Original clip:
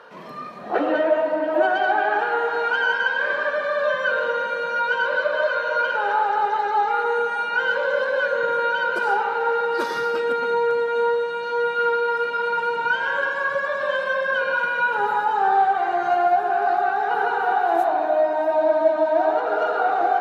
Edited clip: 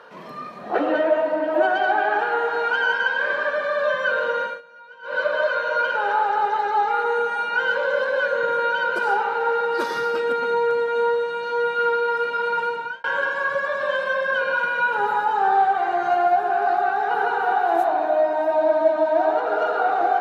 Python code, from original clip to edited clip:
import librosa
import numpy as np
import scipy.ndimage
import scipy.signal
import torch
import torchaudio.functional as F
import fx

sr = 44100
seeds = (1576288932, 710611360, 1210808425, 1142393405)

y = fx.edit(x, sr, fx.fade_down_up(start_s=4.43, length_s=0.78, db=-22.5, fade_s=0.19),
    fx.fade_out_span(start_s=12.63, length_s=0.41), tone=tone)